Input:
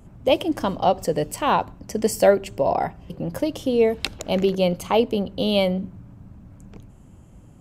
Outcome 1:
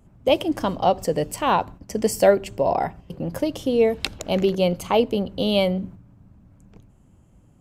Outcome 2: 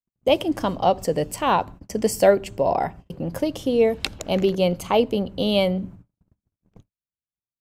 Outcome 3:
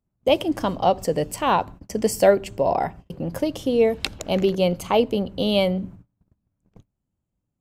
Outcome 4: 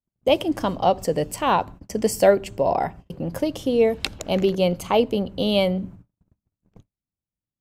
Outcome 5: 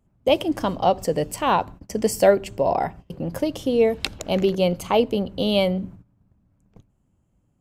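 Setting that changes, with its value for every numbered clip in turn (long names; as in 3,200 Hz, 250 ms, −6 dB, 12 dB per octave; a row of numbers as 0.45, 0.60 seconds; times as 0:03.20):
noise gate, range: −7, −59, −32, −46, −19 decibels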